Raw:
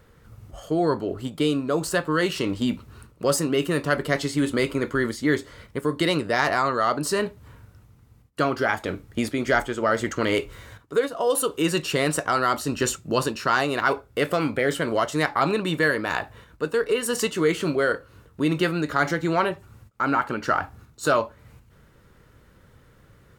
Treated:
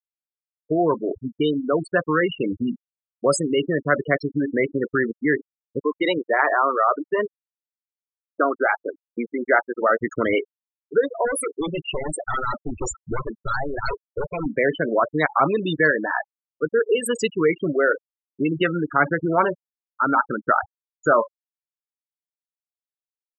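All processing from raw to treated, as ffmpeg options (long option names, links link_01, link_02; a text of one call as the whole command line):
ffmpeg -i in.wav -filter_complex "[0:a]asettb=1/sr,asplit=3[link_01][link_02][link_03];[link_01]atrim=end=5.824[link_04];[link_02]atrim=start=5.82:end=10.01,asetpts=PTS-STARTPTS,afade=type=in:duration=0.004:curve=qsin,afade=type=out:start_time=4.186:duration=0.004:curve=qsin,highpass=270,lowpass=3500,aeval=exprs='val(0)*gte(abs(val(0)),0.0237)':channel_layout=same[link_05];[link_03]atrim=start=10.006[link_06];[link_04][link_05]acrossfade=duration=0.004:curve1=hsin:curve2=qsin[link_07];[link_07][link_06]acrossfade=duration=0.004:curve1=qsin:curve2=hsin,asettb=1/sr,asplit=3[link_08][link_09][link_10];[link_08]atrim=end=11.254[link_11];[link_09]atrim=start=11.25:end=14.46,asetpts=PTS-STARTPTS,afade=type=in:duration=0.004:curve=qsin,afade=type=out:start_time=3.206:duration=0.004:curve=qsin,bandreject=frequency=2200:width=5.9,aeval=exprs='0.0891*(abs(mod(val(0)/0.0891+3,4)-2)-1)':channel_layout=same,asubboost=boost=9.5:cutoff=77[link_12];[link_10]atrim=start=14.456[link_13];[link_11][link_12]acrossfade=duration=0.004:curve1=hsin:curve2=qsin[link_14];[link_14][link_13]acrossfade=duration=0.004:curve1=qsin:curve2=hsin,lowshelf=frequency=150:gain=-4.5,acrossover=split=390|3000[link_15][link_16][link_17];[link_15]acompressor=threshold=-26dB:ratio=8[link_18];[link_18][link_16][link_17]amix=inputs=3:normalize=0,afftfilt=real='re*gte(hypot(re,im),0.112)':imag='im*gte(hypot(re,im),0.112)':win_size=1024:overlap=0.75,volume=4dB" out.wav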